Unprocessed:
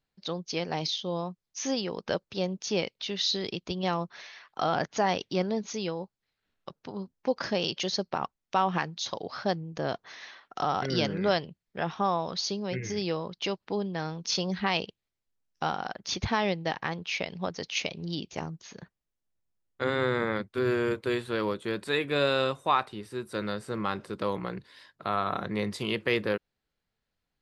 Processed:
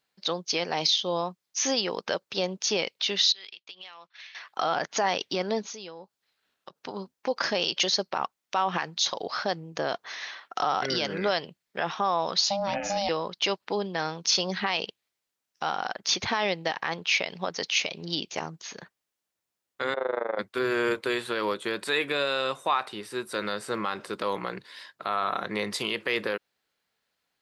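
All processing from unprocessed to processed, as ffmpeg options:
-filter_complex "[0:a]asettb=1/sr,asplit=3[s0][s1][s2];[s0]atrim=end=3.324[s3];[s1]atrim=start=3.32:end=4.35,asetpts=PTS-STARTPTS,afade=t=in:d=0.004:c=qsin,afade=t=out:st=1.026:d=0.004:c=qsin,agate=range=0.0224:threshold=0.00794:ratio=3:release=100:detection=peak,bandpass=f=2800:t=q:w=1.4,acompressor=threshold=0.00447:ratio=16:attack=3.2:release=140:knee=1:detection=peak[s4];[s2]atrim=start=4.346[s5];[s3][s4]acrossfade=d=0.004:c1=hsin:c2=qsin[s6];[s6][s5]acrossfade=d=0.004:c1=qsin:c2=hsin,asettb=1/sr,asplit=3[s7][s8][s9];[s7]atrim=end=5.624[s10];[s8]atrim=start=5.62:end=6.78,asetpts=PTS-STARTPTS,afade=t=in:d=0.004:c=qsin,afade=t=out:st=1.156:d=0.004:c=qsin,equalizer=f=2100:w=3.7:g=-3.5,acompressor=threshold=0.00398:ratio=2.5:attack=3.2:release=140:knee=1:detection=peak[s11];[s9]atrim=start=6.776[s12];[s10][s11]acrossfade=d=0.004:c1=hsin:c2=qsin[s13];[s13][s12]acrossfade=d=0.004:c1=qsin:c2=hsin,asettb=1/sr,asplit=3[s14][s15][s16];[s14]atrim=end=12.444[s17];[s15]atrim=start=12.44:end=13.09,asetpts=PTS-STARTPTS,afade=t=in:d=0.004:c=qsin,afade=t=out:st=0.646:d=0.004:c=qsin,equalizer=f=250:t=o:w=1.2:g=7,aeval=exprs='val(0)*sin(2*PI*400*n/s)':c=same[s18];[s16]atrim=start=13.086[s19];[s17][s18]acrossfade=d=0.004:c1=hsin:c2=qsin[s20];[s20][s19]acrossfade=d=0.004:c1=qsin:c2=hsin,asettb=1/sr,asplit=3[s21][s22][s23];[s21]atrim=end=19.944[s24];[s22]atrim=start=19.94:end=20.39,asetpts=PTS-STARTPTS,afade=t=in:d=0.004:c=qsin,afade=t=out:st=0.446:d=0.004:c=qsin,bandpass=f=640:t=q:w=2.8,acontrast=65,tremolo=f=25:d=0.919[s25];[s23]atrim=start=20.386[s26];[s24][s25]acrossfade=d=0.004:c1=hsin:c2=qsin[s27];[s27][s26]acrossfade=d=0.004:c1=qsin:c2=hsin,alimiter=limit=0.0891:level=0:latency=1:release=78,highpass=f=670:p=1,volume=2.66"

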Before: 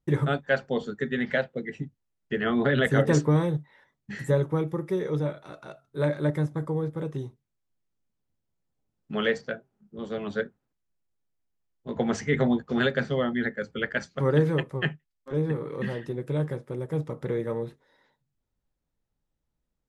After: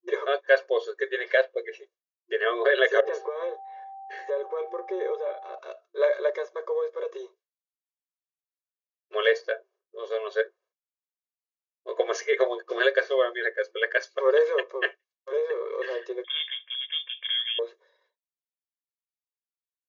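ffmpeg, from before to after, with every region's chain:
-filter_complex "[0:a]asettb=1/sr,asplit=3[s0][s1][s2];[s0]atrim=end=3.004[s3];[s1]atrim=start=3:end=5.58,asetpts=PTS-STARTPTS,afade=t=in:d=0.004:c=qsin,afade=t=out:st=2.576:d=0.004:c=qsin,lowpass=f=2200:p=1,aeval=exprs='val(0)+0.0178*sin(2*PI*780*n/s)':c=same,acompressor=threshold=0.0562:ratio=12:attack=3.2:release=140:knee=1:detection=peak[s4];[s2]atrim=start=5.576[s5];[s3][s4]acrossfade=d=0.004:c1=hsin:c2=qsin[s6];[s6][s5]acrossfade=d=0.004:c1=qsin:c2=hsin,asettb=1/sr,asplit=3[s7][s8][s9];[s7]atrim=end=16.244[s10];[s8]atrim=start=16.24:end=17.59,asetpts=PTS-STARTPTS,afade=t=in:d=0.004:c=qsin,afade=t=out:st=1.346:d=0.004:c=qsin,highpass=f=430:p=1,equalizer=f=1700:w=2.6:g=5,lowpass=f=3100:t=q:w=0.5098,lowpass=f=3100:t=q:w=0.6013,lowpass=f=3100:t=q:w=0.9,lowpass=f=3100:t=q:w=2.563,afreqshift=-3700[s11];[s9]atrim=start=17.586[s12];[s10][s11]acrossfade=d=0.004:c1=hsin:c2=qsin[s13];[s13][s12]acrossfade=d=0.004:c1=qsin:c2=hsin,afftfilt=real='re*between(b*sr/4096,350,7000)':imag='im*between(b*sr/4096,350,7000)':win_size=4096:overlap=0.75,agate=range=0.0224:threshold=0.00126:ratio=3:detection=peak,aecho=1:1:1.8:0.98"

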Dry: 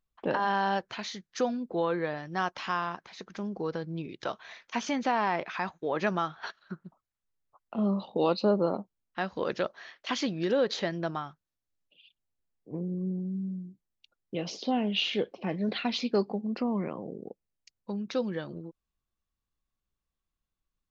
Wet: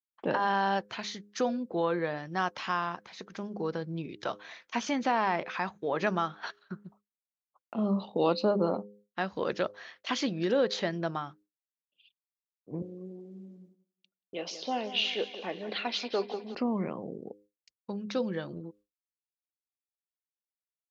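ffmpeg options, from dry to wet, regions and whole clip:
-filter_complex "[0:a]asettb=1/sr,asplit=3[s0][s1][s2];[s0]atrim=end=12.824[s3];[s1]atrim=start=12.82:end=16.55,asetpts=PTS-STARTPTS,afade=t=in:d=0.004:c=qsin,afade=t=out:st=3.726:d=0.004:c=qsin,highpass=410,aecho=1:1:182|364|546|728|910:0.224|0.119|0.0629|0.0333|0.0177,atrim=end_sample=164493[s4];[s2]atrim=start=16.546[s5];[s3][s4]acrossfade=d=0.004:c1=hsin:c2=qsin[s6];[s6][s5]acrossfade=d=0.004:c1=qsin:c2=hsin,bandreject=f=102.6:t=h:w=4,bandreject=f=205.2:t=h:w=4,bandreject=f=307.8:t=h:w=4,bandreject=f=410.4:t=h:w=4,bandreject=f=513:t=h:w=4,agate=range=0.0224:threshold=0.00224:ratio=3:detection=peak,highpass=52"

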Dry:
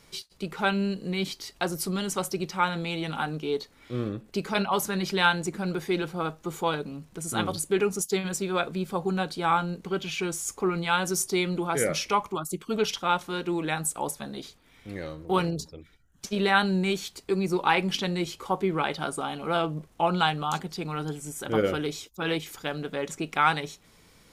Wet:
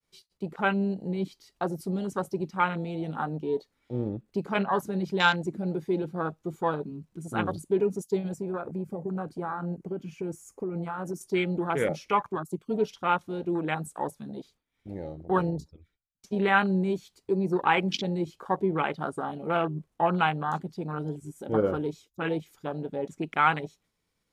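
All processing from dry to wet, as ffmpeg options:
-filter_complex "[0:a]asettb=1/sr,asplit=3[s0][s1][s2];[s0]atrim=end=8.344[s3];[s1]atrim=start=8.34:end=11.21,asetpts=PTS-STARTPTS,afade=t=in:d=0.004:c=qsin,afade=t=out:st=2.866:d=0.004:c=qsin,equalizer=f=3700:w=2.3:g=-13,acompressor=threshold=0.0447:ratio=10:attack=3.2:release=140:knee=1:detection=peak[s4];[s2]atrim=start=11.206[s5];[s3][s4]acrossfade=d=0.004:c1=hsin:c2=qsin[s6];[s6][s5]acrossfade=d=0.004:c1=qsin:c2=hsin,agate=range=0.0224:threshold=0.00282:ratio=3:detection=peak,afwtdn=0.0282"

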